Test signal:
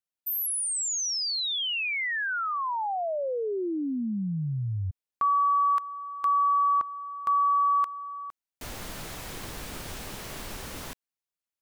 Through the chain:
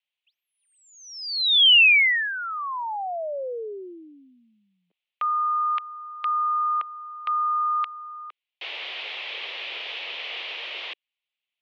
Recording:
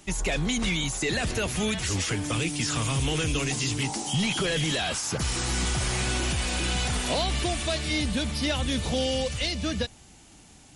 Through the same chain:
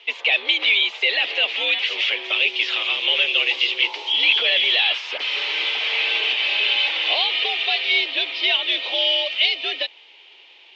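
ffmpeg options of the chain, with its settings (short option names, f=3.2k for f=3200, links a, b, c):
-af "aexciter=amount=9.5:drive=3:freq=2.1k,highpass=f=360:t=q:w=0.5412,highpass=f=360:t=q:w=1.307,lowpass=f=3.1k:t=q:w=0.5176,lowpass=f=3.1k:t=q:w=0.7071,lowpass=f=3.1k:t=q:w=1.932,afreqshift=81"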